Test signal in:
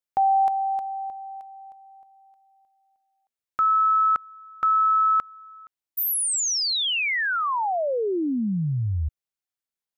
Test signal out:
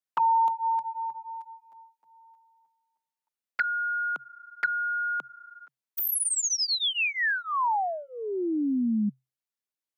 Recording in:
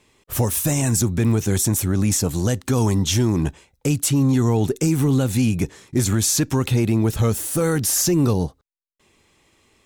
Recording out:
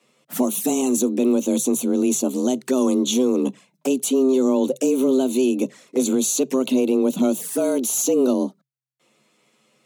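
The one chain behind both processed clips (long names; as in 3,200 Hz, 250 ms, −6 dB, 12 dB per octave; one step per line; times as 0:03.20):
flanger swept by the level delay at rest 11 ms, full sweep at −18 dBFS
frequency shifter +130 Hz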